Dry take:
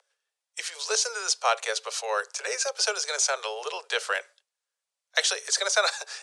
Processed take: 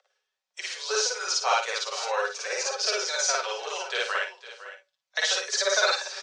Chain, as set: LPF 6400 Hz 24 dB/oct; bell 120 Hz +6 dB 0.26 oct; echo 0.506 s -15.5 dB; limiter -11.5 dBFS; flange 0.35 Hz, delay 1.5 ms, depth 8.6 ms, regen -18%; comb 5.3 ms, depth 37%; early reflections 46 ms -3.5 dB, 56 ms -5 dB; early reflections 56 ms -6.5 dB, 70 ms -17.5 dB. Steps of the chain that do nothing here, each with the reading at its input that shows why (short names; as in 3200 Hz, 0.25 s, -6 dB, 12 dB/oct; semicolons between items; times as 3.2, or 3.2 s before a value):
bell 120 Hz: input band starts at 340 Hz